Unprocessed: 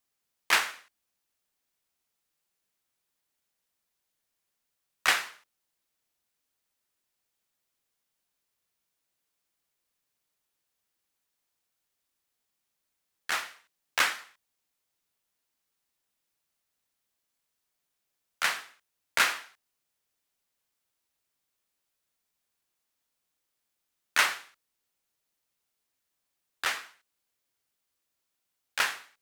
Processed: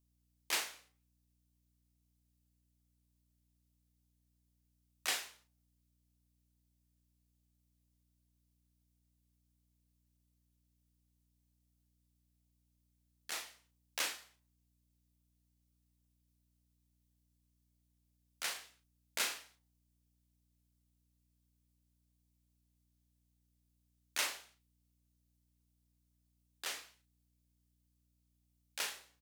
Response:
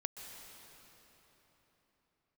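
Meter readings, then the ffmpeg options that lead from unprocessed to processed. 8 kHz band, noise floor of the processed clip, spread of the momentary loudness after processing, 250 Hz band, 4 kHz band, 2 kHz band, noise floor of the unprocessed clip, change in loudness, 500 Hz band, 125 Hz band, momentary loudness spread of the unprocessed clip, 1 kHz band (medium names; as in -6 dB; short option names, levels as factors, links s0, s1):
-5.0 dB, -78 dBFS, 14 LU, -8.0 dB, -8.5 dB, -14.5 dB, -82 dBFS, -10.5 dB, -9.0 dB, no reading, 14 LU, -15.0 dB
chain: -filter_complex "[0:a]flanger=delay=6.5:depth=8.7:regen=-81:speed=1.7:shape=sinusoidal,highpass=280,equalizer=f=1400:t=o:w=2.1:g=-13.5,asplit=2[s0][s1];[s1]adelay=37,volume=0.447[s2];[s0][s2]amix=inputs=2:normalize=0,aeval=exprs='val(0)+0.000158*(sin(2*PI*60*n/s)+sin(2*PI*2*60*n/s)/2+sin(2*PI*3*60*n/s)/3+sin(2*PI*4*60*n/s)/4+sin(2*PI*5*60*n/s)/5)':c=same"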